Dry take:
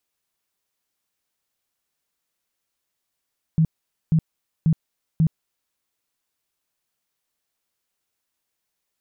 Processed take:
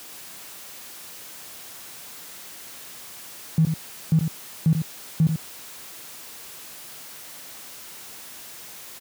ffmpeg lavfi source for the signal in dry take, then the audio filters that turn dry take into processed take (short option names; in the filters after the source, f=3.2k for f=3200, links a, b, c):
-f lavfi -i "aevalsrc='0.211*sin(2*PI*160*mod(t,0.54))*lt(mod(t,0.54),11/160)':d=2.16:s=44100"
-filter_complex "[0:a]aeval=exprs='val(0)+0.5*0.0168*sgn(val(0))':c=same,highpass=99,asplit=2[a][b];[b]aecho=0:1:89:0.447[c];[a][c]amix=inputs=2:normalize=0"